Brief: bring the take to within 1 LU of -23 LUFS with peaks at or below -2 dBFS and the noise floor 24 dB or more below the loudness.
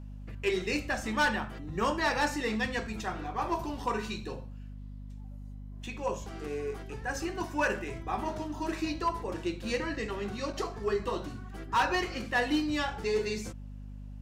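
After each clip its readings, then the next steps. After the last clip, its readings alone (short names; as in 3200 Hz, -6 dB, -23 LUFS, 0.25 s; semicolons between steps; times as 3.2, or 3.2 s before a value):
clipped 0.3%; flat tops at -21.0 dBFS; hum 50 Hz; harmonics up to 250 Hz; hum level -41 dBFS; loudness -32.5 LUFS; peak -21.0 dBFS; loudness target -23.0 LUFS
-> clip repair -21 dBFS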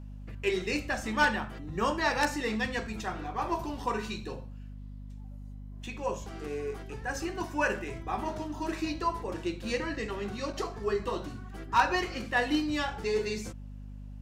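clipped 0.0%; hum 50 Hz; harmonics up to 250 Hz; hum level -40 dBFS
-> de-hum 50 Hz, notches 5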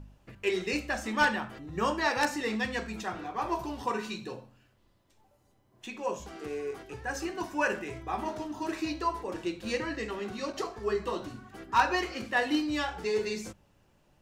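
hum none; loudness -32.0 LUFS; peak -11.5 dBFS; loudness target -23.0 LUFS
-> gain +9 dB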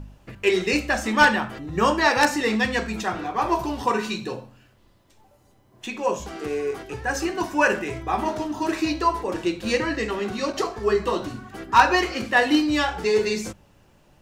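loudness -23.0 LUFS; peak -2.5 dBFS; noise floor -58 dBFS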